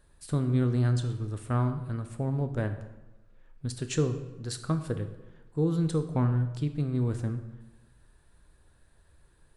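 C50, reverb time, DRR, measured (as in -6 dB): 10.5 dB, 1.1 s, 8.0 dB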